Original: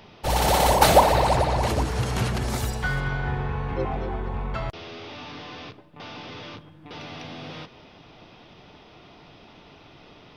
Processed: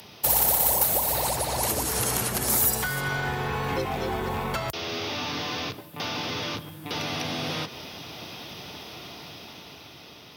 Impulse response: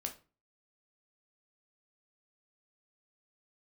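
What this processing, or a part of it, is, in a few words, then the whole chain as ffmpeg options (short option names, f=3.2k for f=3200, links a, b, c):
FM broadcast chain: -filter_complex "[0:a]highpass=f=63:w=0.5412,highpass=f=63:w=1.3066,dynaudnorm=f=320:g=9:m=7.5dB,acrossover=split=210|2200[a][b][c];[a]acompressor=threshold=-34dB:ratio=4[d];[b]acompressor=threshold=-26dB:ratio=4[e];[c]acompressor=threshold=-41dB:ratio=4[f];[d][e][f]amix=inputs=3:normalize=0,aemphasis=mode=production:type=50fm,alimiter=limit=-17.5dB:level=0:latency=1:release=396,asoftclip=type=hard:threshold=-20dB,lowpass=f=15k:w=0.5412,lowpass=f=15k:w=1.3066,aemphasis=mode=production:type=50fm"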